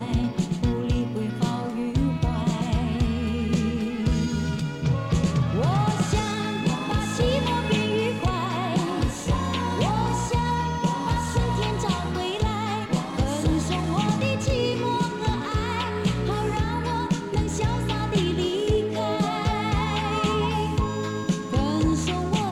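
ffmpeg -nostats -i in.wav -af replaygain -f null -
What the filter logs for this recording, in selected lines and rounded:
track_gain = +7.4 dB
track_peak = 0.145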